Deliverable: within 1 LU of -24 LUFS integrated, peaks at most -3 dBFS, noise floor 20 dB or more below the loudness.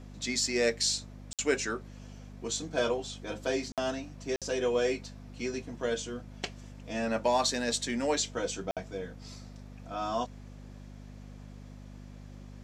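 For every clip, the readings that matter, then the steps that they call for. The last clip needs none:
dropouts 4; longest dropout 57 ms; hum 50 Hz; highest harmonic 250 Hz; hum level -45 dBFS; loudness -32.0 LUFS; peak level -12.5 dBFS; loudness target -24.0 LUFS
-> interpolate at 1.33/3.72/4.36/8.71 s, 57 ms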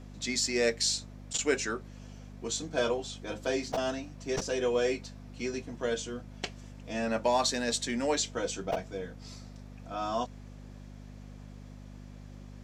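dropouts 0; hum 50 Hz; highest harmonic 250 Hz; hum level -45 dBFS
-> de-hum 50 Hz, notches 5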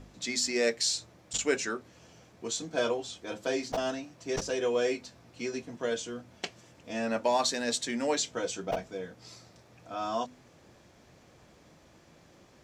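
hum not found; loudness -32.0 LUFS; peak level -12.5 dBFS; loudness target -24.0 LUFS
-> trim +8 dB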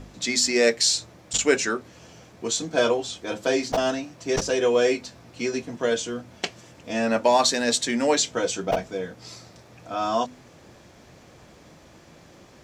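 loudness -24.0 LUFS; peak level -4.5 dBFS; noise floor -51 dBFS

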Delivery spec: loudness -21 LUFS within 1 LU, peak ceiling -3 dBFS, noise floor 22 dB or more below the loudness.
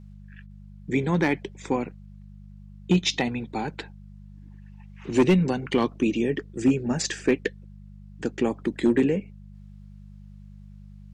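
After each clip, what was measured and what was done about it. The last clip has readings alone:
clipped samples 0.3%; clipping level -12.5 dBFS; hum 50 Hz; highest harmonic 200 Hz; hum level -42 dBFS; loudness -25.5 LUFS; peak level -12.5 dBFS; loudness target -21.0 LUFS
-> clip repair -12.5 dBFS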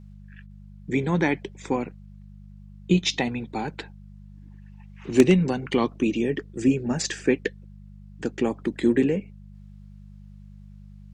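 clipped samples 0.0%; hum 50 Hz; highest harmonic 150 Hz; hum level -43 dBFS
-> de-hum 50 Hz, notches 3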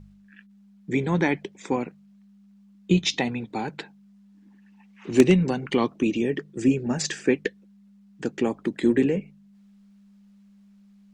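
hum not found; loudness -25.0 LUFS; peak level -3.0 dBFS; loudness target -21.0 LUFS
-> trim +4 dB; peak limiter -3 dBFS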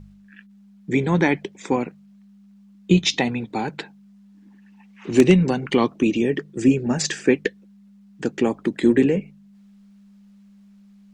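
loudness -21.0 LUFS; peak level -3.0 dBFS; noise floor -50 dBFS

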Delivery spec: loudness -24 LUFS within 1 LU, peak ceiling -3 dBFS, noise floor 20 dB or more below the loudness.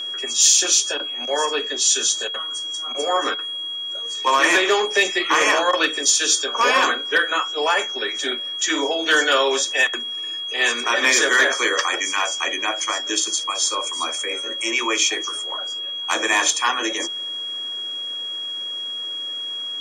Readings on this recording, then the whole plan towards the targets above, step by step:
steady tone 3.3 kHz; tone level -26 dBFS; loudness -19.5 LUFS; peak level -4.0 dBFS; loudness target -24.0 LUFS
-> band-stop 3.3 kHz, Q 30; trim -4.5 dB

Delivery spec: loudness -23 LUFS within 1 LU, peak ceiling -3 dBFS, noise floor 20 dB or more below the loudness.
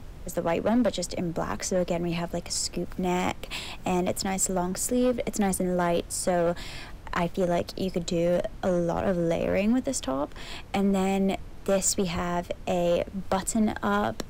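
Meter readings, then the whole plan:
clipped samples 1.3%; clipping level -18.0 dBFS; noise floor -43 dBFS; noise floor target -48 dBFS; loudness -27.5 LUFS; peak level -18.0 dBFS; loudness target -23.0 LUFS
-> clip repair -18 dBFS; noise print and reduce 6 dB; trim +4.5 dB

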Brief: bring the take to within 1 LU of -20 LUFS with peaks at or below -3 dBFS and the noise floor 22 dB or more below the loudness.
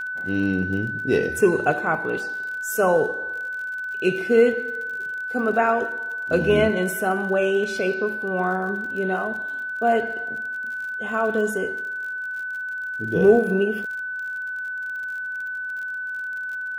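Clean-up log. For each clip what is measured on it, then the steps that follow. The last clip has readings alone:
tick rate 43 per s; steady tone 1.5 kHz; tone level -27 dBFS; loudness -23.5 LUFS; peak level -3.5 dBFS; loudness target -20.0 LUFS
-> de-click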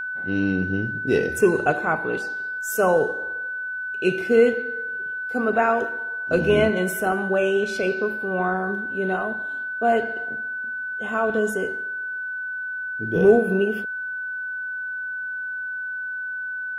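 tick rate 0 per s; steady tone 1.5 kHz; tone level -27 dBFS
-> band-stop 1.5 kHz, Q 30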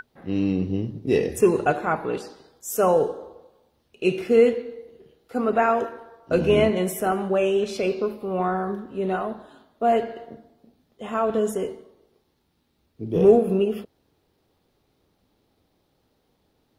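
steady tone not found; loudness -23.0 LUFS; peak level -4.0 dBFS; loudness target -20.0 LUFS
-> trim +3 dB; peak limiter -3 dBFS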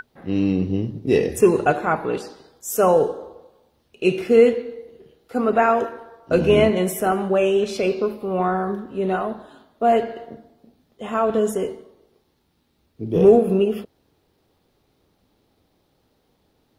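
loudness -20.0 LUFS; peak level -3.0 dBFS; noise floor -66 dBFS

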